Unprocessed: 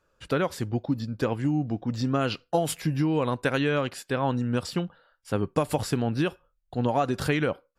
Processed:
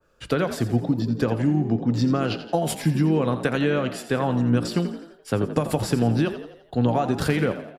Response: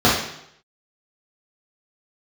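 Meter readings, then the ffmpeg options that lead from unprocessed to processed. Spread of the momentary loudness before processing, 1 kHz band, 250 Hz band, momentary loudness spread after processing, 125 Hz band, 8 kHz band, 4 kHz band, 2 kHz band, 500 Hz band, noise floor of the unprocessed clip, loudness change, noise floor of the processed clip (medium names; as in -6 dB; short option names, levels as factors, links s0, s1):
5 LU, +1.0 dB, +5.0 dB, 6 LU, +5.0 dB, +2.5 dB, +1.5 dB, +1.0 dB, +3.0 dB, -72 dBFS, +4.0 dB, -53 dBFS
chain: -filter_complex "[0:a]bandreject=f=990:w=16,acrossover=split=140[s0][s1];[s1]acompressor=threshold=0.0562:ratio=6[s2];[s0][s2]amix=inputs=2:normalize=0,asplit=6[s3][s4][s5][s6][s7][s8];[s4]adelay=85,afreqshift=53,volume=0.266[s9];[s5]adelay=170,afreqshift=106,volume=0.127[s10];[s6]adelay=255,afreqshift=159,volume=0.061[s11];[s7]adelay=340,afreqshift=212,volume=0.0295[s12];[s8]adelay=425,afreqshift=265,volume=0.0141[s13];[s3][s9][s10][s11][s12][s13]amix=inputs=6:normalize=0,asplit=2[s14][s15];[1:a]atrim=start_sample=2205[s16];[s15][s16]afir=irnorm=-1:irlink=0,volume=0.0112[s17];[s14][s17]amix=inputs=2:normalize=0,adynamicequalizer=threshold=0.00501:dfrequency=1900:dqfactor=0.7:tfrequency=1900:tqfactor=0.7:attack=5:release=100:ratio=0.375:range=1.5:mode=cutabove:tftype=highshelf,volume=1.88"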